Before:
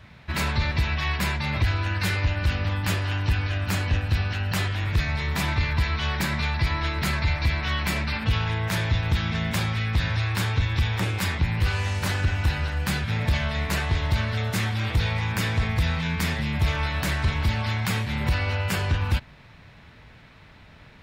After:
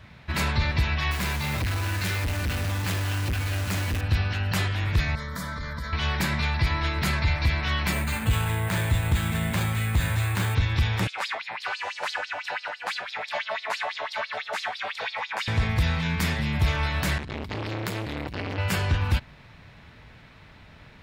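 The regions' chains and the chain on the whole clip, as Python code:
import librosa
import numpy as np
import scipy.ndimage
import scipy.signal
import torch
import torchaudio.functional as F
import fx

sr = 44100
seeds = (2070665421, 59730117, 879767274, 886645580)

y = fx.chain(x, sr, fx.overload_stage(gain_db=22.5),
    fx.quant_dither(seeds[0], bits=6, dither='none'), at=(1.11, 4.01))
y = fx.chain(y, sr, fx.fixed_phaser(hz=530.0, stages=8),
    fx.comb_fb(f0_hz=120.0, decay_s=0.33, harmonics='odd', damping=0.0, mix_pct=60),
    fx.env_flatten(amount_pct=70), at=(5.15, 5.93))
y = fx.chain(y, sr, fx.high_shelf(hz=5800.0, db=-8.0),
    fx.resample_bad(factor=4, down='filtered', up='hold'), at=(7.92, 10.55))
y = fx.chain(y, sr, fx.high_shelf(hz=2300.0, db=-9.0),
    fx.filter_lfo_highpass(shape='sine', hz=6.0, low_hz=590.0, high_hz=4900.0, q=3.8),
    fx.lowpass(hz=10000.0, slope=12), at=(11.07, 15.48))
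y = fx.chain(y, sr, fx.over_compress(threshold_db=-25.0, ratio=-0.5),
    fx.notch(hz=5800.0, q=24.0),
    fx.transformer_sat(knee_hz=980.0), at=(17.18, 18.58))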